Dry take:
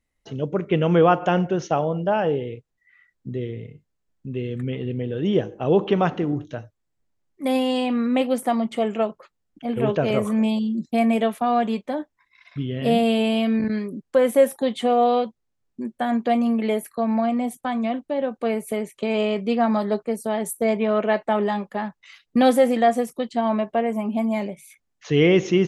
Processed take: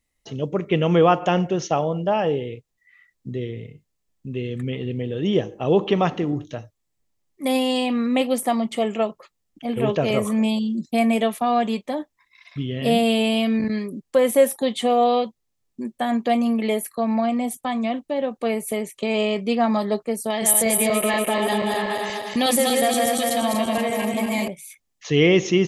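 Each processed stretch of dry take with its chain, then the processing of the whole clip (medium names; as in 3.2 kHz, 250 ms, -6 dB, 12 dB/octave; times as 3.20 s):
20.30–24.48 s: backward echo that repeats 120 ms, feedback 72%, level -2.5 dB + treble shelf 2.1 kHz +11 dB + compression 2:1, threshold -21 dBFS
whole clip: treble shelf 3 kHz +8 dB; band-stop 1.5 kHz, Q 8.2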